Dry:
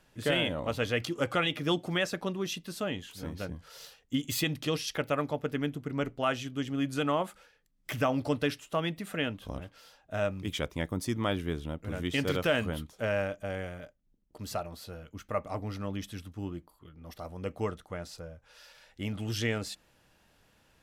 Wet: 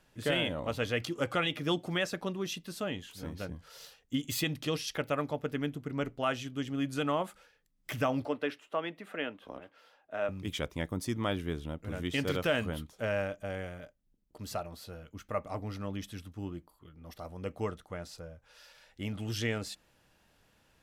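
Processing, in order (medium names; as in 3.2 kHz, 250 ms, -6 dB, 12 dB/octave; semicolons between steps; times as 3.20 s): 8.25–10.29 s: three-band isolator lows -21 dB, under 250 Hz, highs -14 dB, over 3.1 kHz; trim -2 dB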